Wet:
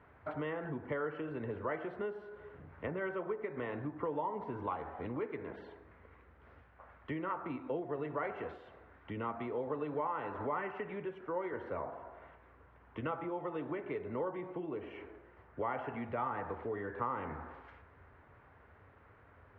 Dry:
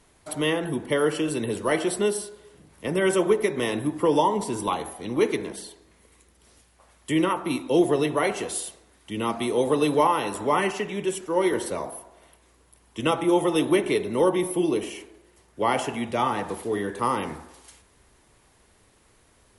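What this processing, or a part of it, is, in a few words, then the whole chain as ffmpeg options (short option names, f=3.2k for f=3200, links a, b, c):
bass amplifier: -af "acompressor=threshold=-37dB:ratio=4,highpass=69,equalizer=f=86:t=q:w=4:g=8,equalizer=f=200:t=q:w=4:g=-7,equalizer=f=340:t=q:w=4:g=-6,equalizer=f=1.4k:t=q:w=4:g=5,lowpass=f=2k:w=0.5412,lowpass=f=2k:w=1.3066,volume=1dB"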